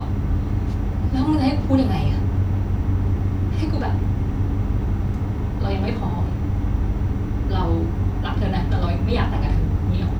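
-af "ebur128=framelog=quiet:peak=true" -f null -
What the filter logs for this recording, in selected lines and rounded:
Integrated loudness:
  I:         -22.4 LUFS
  Threshold: -32.3 LUFS
Loudness range:
  LRA:         2.3 LU
  Threshold: -42.6 LUFS
  LRA low:   -23.6 LUFS
  LRA high:  -21.3 LUFS
True peak:
  Peak:       -3.9 dBFS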